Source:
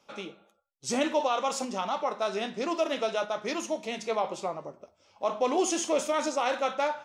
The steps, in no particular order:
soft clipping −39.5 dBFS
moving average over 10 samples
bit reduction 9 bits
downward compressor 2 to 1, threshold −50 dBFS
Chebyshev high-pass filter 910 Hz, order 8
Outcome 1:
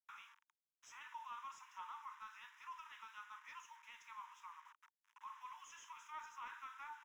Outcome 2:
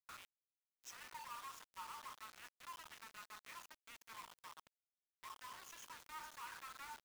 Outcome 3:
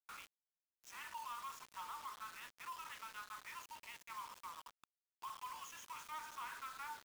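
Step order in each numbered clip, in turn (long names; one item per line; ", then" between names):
downward compressor, then bit reduction, then Chebyshev high-pass filter, then soft clipping, then moving average
moving average, then downward compressor, then soft clipping, then Chebyshev high-pass filter, then bit reduction
Chebyshev high-pass filter, then downward compressor, then moving average, then soft clipping, then bit reduction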